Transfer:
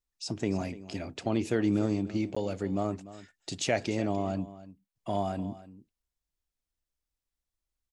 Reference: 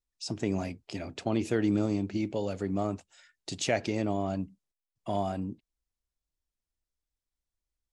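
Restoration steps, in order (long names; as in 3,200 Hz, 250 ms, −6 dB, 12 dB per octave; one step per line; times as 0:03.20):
repair the gap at 0:02.35, 15 ms
echo removal 294 ms −16.5 dB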